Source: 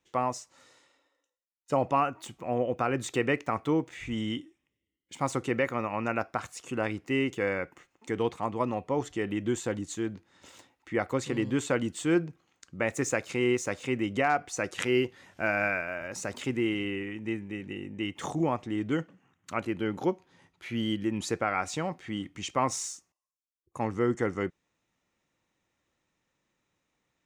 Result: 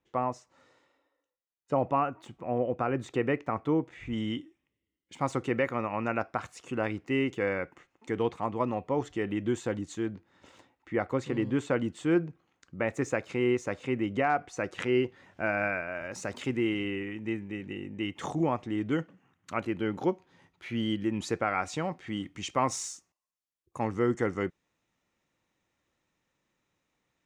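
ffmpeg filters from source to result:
-af "asetnsamples=n=441:p=0,asendcmd='4.13 lowpass f 3400;10.1 lowpass f 2000;15.95 lowpass f 4900;22.07 lowpass f 9500',lowpass=f=1400:p=1"

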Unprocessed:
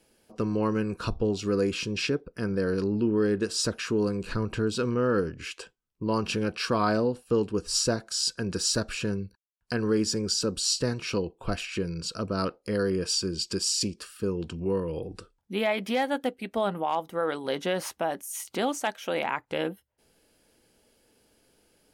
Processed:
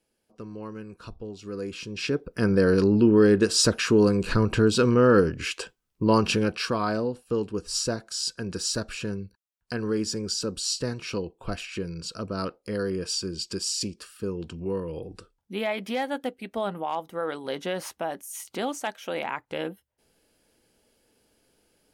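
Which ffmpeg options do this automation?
-af "volume=2.24,afade=t=in:st=1.36:d=0.61:silence=0.446684,afade=t=in:st=1.97:d=0.47:silence=0.266073,afade=t=out:st=6.12:d=0.67:silence=0.354813"

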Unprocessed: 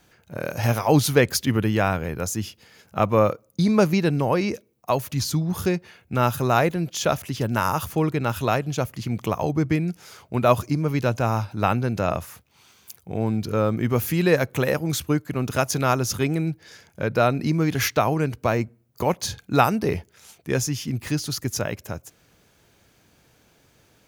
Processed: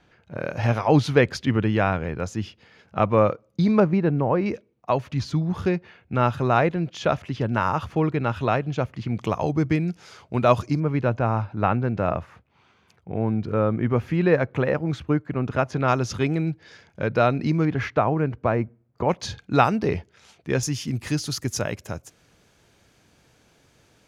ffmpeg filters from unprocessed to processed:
-af "asetnsamples=n=441:p=0,asendcmd='3.8 lowpass f 1500;4.46 lowpass f 3000;9.17 lowpass f 5700;10.8 lowpass f 2100;15.88 lowpass f 4200;17.65 lowpass f 1800;19.09 lowpass f 4500;20.63 lowpass f 9800',lowpass=3400"

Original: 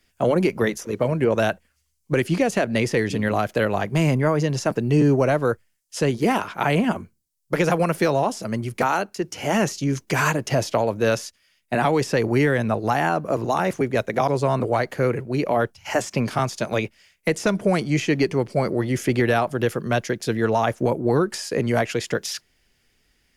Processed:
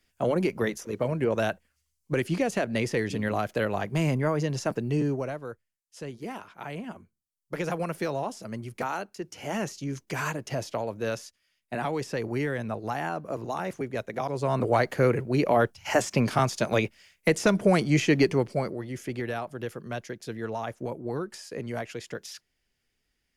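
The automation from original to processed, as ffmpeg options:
-af "volume=3.16,afade=t=out:st=4.73:d=0.68:silence=0.281838,afade=t=in:st=6.93:d=0.8:silence=0.446684,afade=t=in:st=14.32:d=0.45:silence=0.354813,afade=t=out:st=18.28:d=0.5:silence=0.266073"

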